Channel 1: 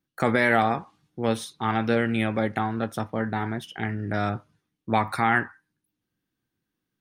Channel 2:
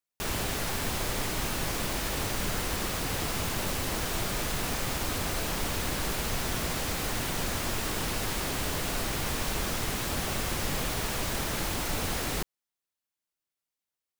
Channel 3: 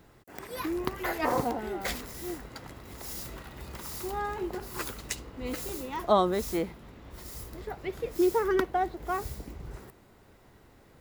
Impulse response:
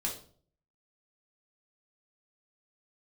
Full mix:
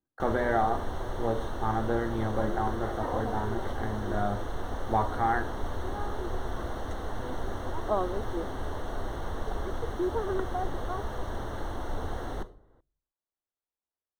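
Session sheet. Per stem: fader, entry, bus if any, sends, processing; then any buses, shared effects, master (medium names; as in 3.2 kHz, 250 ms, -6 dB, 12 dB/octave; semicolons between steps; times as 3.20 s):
-6.0 dB, 0.00 s, send -5.5 dB, none
-2.0 dB, 0.00 s, send -11 dB, none
-4.0 dB, 1.80 s, no send, none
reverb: on, RT60 0.50 s, pre-delay 3 ms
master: boxcar filter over 18 samples; peaking EQ 170 Hz -12 dB 0.72 oct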